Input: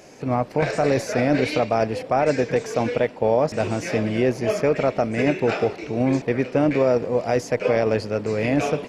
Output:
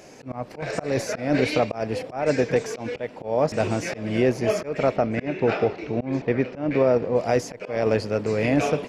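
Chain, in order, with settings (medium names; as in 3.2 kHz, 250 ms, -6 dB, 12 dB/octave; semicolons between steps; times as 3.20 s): slow attack 213 ms; 4.96–7.16 s: distance through air 130 m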